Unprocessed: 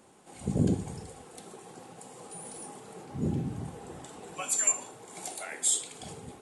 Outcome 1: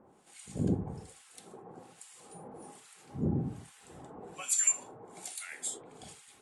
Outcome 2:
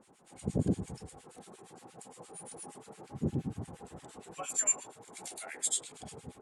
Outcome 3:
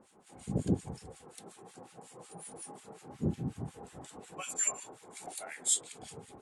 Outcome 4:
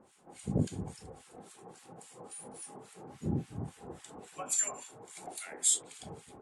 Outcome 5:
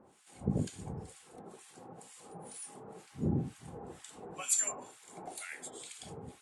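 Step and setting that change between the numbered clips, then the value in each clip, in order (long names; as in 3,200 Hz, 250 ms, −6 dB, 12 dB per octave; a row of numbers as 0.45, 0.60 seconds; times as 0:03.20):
two-band tremolo in antiphase, speed: 1.2, 8.6, 5.5, 3.6, 2.1 Hertz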